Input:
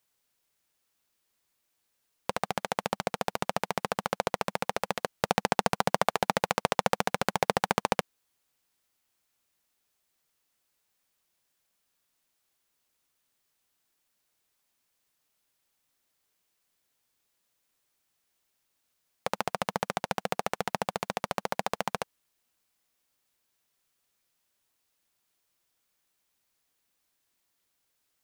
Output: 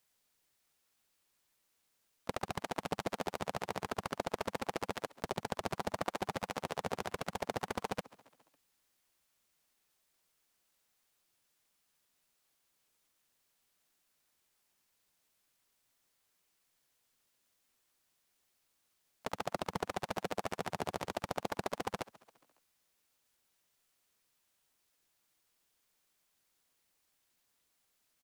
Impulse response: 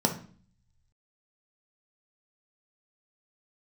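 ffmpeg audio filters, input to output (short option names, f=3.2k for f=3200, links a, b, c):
-filter_complex "[0:a]alimiter=limit=-15.5dB:level=0:latency=1:release=41,asplit=5[a][b][c][d][e];[b]adelay=137,afreqshift=33,volume=-22dB[f];[c]adelay=274,afreqshift=66,volume=-26.9dB[g];[d]adelay=411,afreqshift=99,volume=-31.8dB[h];[e]adelay=548,afreqshift=132,volume=-36.6dB[i];[a][f][g][h][i]amix=inputs=5:normalize=0,aeval=exprs='0.178*(cos(1*acos(clip(val(0)/0.178,-1,1)))-cos(1*PI/2))+0.00224*(cos(5*acos(clip(val(0)/0.178,-1,1)))-cos(5*PI/2))':c=same,asplit=4[j][k][l][m];[k]asetrate=22050,aresample=44100,atempo=2,volume=-7dB[n];[l]asetrate=37084,aresample=44100,atempo=1.18921,volume=-4dB[o];[m]asetrate=55563,aresample=44100,atempo=0.793701,volume=-18dB[p];[j][n][o][p]amix=inputs=4:normalize=0,volume=-3dB"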